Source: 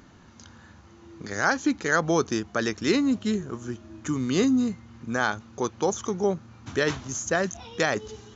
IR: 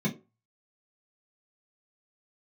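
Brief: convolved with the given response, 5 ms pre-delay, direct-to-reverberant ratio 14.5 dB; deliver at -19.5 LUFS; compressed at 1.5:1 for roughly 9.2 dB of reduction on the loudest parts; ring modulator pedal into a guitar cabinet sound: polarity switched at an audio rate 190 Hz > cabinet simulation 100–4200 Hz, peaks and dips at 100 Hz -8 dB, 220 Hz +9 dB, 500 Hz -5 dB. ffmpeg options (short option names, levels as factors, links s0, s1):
-filter_complex "[0:a]acompressor=threshold=0.00562:ratio=1.5,asplit=2[s0][s1];[1:a]atrim=start_sample=2205,adelay=5[s2];[s1][s2]afir=irnorm=-1:irlink=0,volume=0.0841[s3];[s0][s3]amix=inputs=2:normalize=0,aeval=exprs='val(0)*sgn(sin(2*PI*190*n/s))':c=same,highpass=100,equalizer=f=100:t=q:w=4:g=-8,equalizer=f=220:t=q:w=4:g=9,equalizer=f=500:t=q:w=4:g=-5,lowpass=f=4200:w=0.5412,lowpass=f=4200:w=1.3066,volume=5.96"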